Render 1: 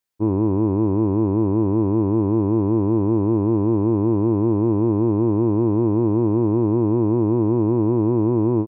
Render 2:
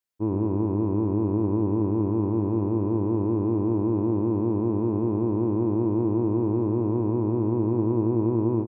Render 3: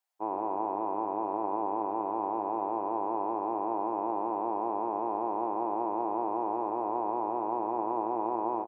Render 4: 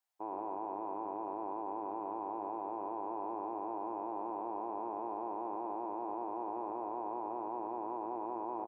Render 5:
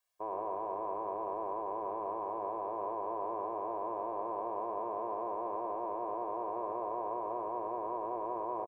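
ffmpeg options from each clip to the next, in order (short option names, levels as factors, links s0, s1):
-af "aecho=1:1:101:0.376,volume=0.501"
-af "highpass=f=760:t=q:w=4.9"
-af "alimiter=level_in=1.41:limit=0.0631:level=0:latency=1:release=12,volume=0.708,volume=0.75"
-af "aecho=1:1:1.8:0.83,volume=1.26"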